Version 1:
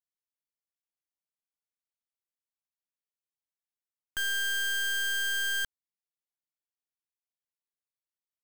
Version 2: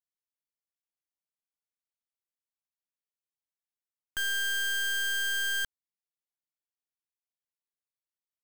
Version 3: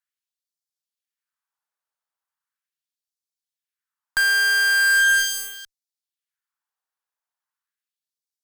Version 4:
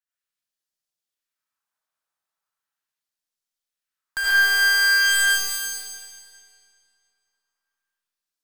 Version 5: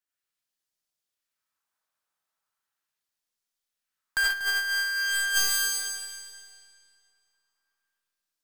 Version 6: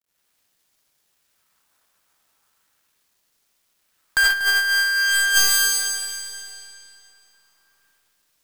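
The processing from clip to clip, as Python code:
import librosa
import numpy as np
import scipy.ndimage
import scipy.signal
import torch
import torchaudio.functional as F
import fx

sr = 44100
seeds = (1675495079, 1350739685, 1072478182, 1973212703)

y1 = x
y2 = fx.filter_lfo_highpass(y1, sr, shape='sine', hz=0.39, low_hz=510.0, high_hz=4800.0, q=1.5)
y2 = fx.band_shelf(y2, sr, hz=1200.0, db=8.5, octaves=1.3)
y2 = fx.cheby_harmonics(y2, sr, harmonics=(7,), levels_db=(-11,), full_scale_db=-15.0)
y2 = y2 * librosa.db_to_amplitude(3.0)
y3 = fx.rev_freeverb(y2, sr, rt60_s=2.3, hf_ratio=0.95, predelay_ms=45, drr_db=-9.5)
y3 = y3 * librosa.db_to_amplitude(-6.5)
y4 = fx.over_compress(y3, sr, threshold_db=-22.0, ratio=-0.5)
y4 = fx.echo_feedback(y4, sr, ms=239, feedback_pct=29, wet_db=-14.0)
y4 = y4 * librosa.db_to_amplitude(-3.5)
y5 = fx.law_mismatch(y4, sr, coded='mu')
y5 = y5 * librosa.db_to_amplitude(7.0)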